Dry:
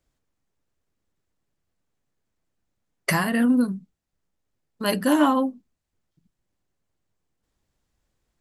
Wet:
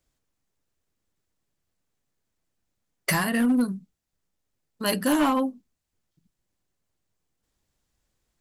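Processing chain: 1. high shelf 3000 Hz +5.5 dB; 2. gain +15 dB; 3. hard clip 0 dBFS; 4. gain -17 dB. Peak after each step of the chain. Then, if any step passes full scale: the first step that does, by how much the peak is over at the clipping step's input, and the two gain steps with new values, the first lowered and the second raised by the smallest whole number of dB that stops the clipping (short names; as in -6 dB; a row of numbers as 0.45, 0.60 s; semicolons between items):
-6.0, +9.0, 0.0, -17.0 dBFS; step 2, 9.0 dB; step 2 +6 dB, step 4 -8 dB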